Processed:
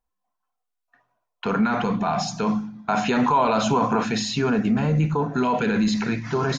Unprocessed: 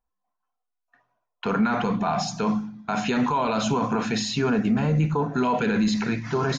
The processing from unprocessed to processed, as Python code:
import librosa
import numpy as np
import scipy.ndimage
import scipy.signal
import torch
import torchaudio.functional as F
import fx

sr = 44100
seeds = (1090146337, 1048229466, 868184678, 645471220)

y = fx.peak_eq(x, sr, hz=820.0, db=4.5, octaves=1.9, at=(2.75, 4.04))
y = y * 10.0 ** (1.0 / 20.0)